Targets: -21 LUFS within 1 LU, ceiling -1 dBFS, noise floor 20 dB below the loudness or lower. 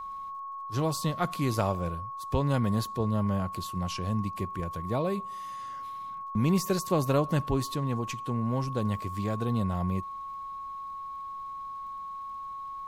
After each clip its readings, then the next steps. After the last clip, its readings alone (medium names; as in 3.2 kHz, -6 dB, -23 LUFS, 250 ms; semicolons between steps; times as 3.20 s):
tick rate 32 per s; steady tone 1.1 kHz; tone level -36 dBFS; loudness -31.0 LUFS; peak level -14.5 dBFS; loudness target -21.0 LUFS
-> de-click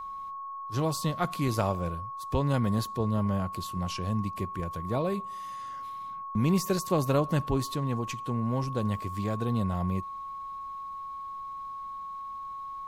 tick rate 0.078 per s; steady tone 1.1 kHz; tone level -36 dBFS
-> band-stop 1.1 kHz, Q 30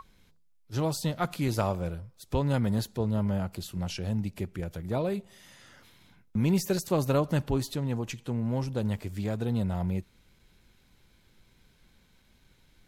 steady tone not found; loudness -30.5 LUFS; peak level -15.0 dBFS; loudness target -21.0 LUFS
-> trim +9.5 dB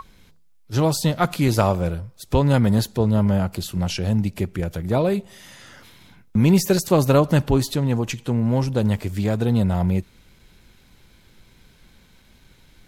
loudness -21.0 LUFS; peak level -5.5 dBFS; noise floor -54 dBFS